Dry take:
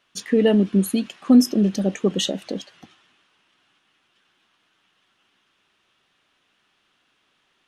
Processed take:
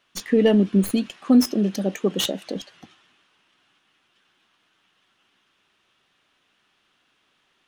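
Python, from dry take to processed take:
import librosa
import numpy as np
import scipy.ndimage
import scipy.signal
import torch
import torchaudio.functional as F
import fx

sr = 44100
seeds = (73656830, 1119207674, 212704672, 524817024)

y = fx.tracing_dist(x, sr, depth_ms=0.063)
y = fx.highpass(y, sr, hz=210.0, slope=6, at=(1.22, 2.56))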